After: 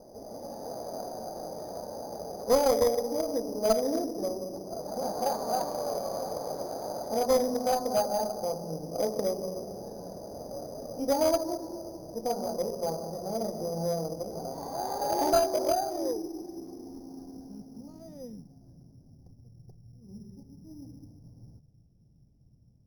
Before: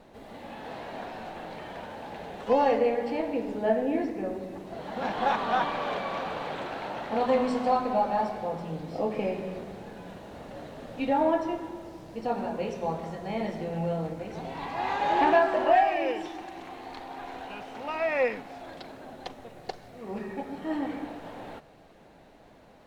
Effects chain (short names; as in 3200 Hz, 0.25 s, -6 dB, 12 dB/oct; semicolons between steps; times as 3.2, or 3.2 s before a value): low-pass sweep 610 Hz -> 120 Hz, 15.26–19.08; in parallel at -0.5 dB: compressor, threshold -35 dBFS, peak gain reduction 20.5 dB; on the sum: added harmonics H 2 -11 dB, 8 -26 dB, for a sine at -6 dBFS; careless resampling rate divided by 8×, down filtered, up hold; gain -7 dB